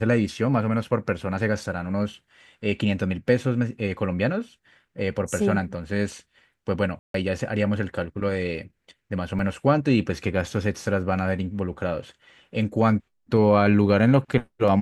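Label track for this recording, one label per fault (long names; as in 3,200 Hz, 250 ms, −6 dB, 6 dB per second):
6.990000	7.140000	drop-out 153 ms
9.390000	9.390000	drop-out 2.4 ms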